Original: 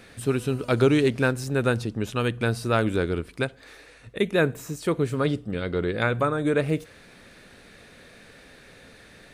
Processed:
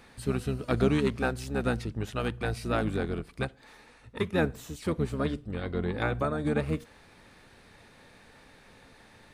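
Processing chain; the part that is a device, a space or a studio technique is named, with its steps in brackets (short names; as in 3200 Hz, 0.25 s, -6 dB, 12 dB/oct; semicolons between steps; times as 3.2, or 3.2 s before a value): octave pedal (harmoniser -12 st -3 dB); gain -7 dB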